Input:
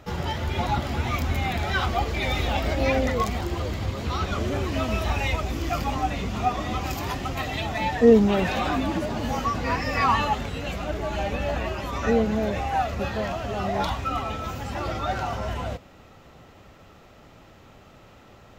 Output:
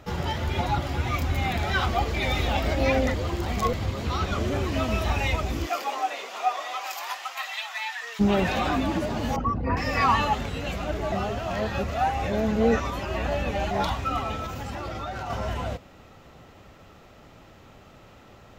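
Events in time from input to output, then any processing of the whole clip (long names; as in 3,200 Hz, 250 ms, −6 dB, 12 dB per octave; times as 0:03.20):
0:00.61–0:01.38: notch comb filter 220 Hz
0:03.14–0:03.73: reverse
0:05.65–0:08.19: high-pass filter 360 Hz → 1,300 Hz 24 dB per octave
0:09.36–0:09.77: spectral envelope exaggerated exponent 2
0:11.12–0:13.71: reverse
0:14.45–0:15.30: downward compressor, threshold −29 dBFS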